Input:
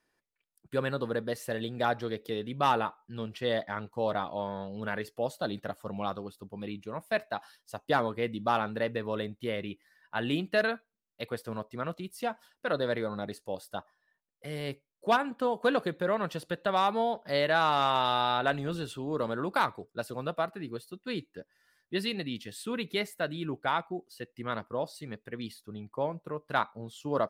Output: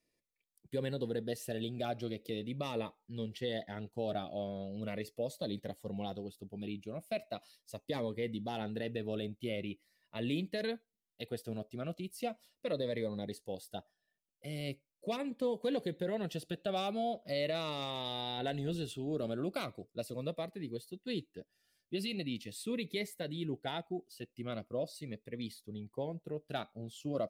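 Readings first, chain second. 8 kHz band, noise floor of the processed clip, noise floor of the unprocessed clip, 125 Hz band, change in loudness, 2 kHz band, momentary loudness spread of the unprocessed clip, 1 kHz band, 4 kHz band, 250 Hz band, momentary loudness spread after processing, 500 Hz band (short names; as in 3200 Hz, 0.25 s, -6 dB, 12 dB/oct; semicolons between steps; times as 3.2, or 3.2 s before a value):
-2.5 dB, under -85 dBFS, -84 dBFS, -2.5 dB, -7.0 dB, -12.5 dB, 13 LU, -14.0 dB, -5.5 dB, -3.0 dB, 9 LU, -6.0 dB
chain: band shelf 1200 Hz -11 dB 1.2 oct; limiter -22.5 dBFS, peak gain reduction 6.5 dB; cascading phaser falling 0.4 Hz; gain -2 dB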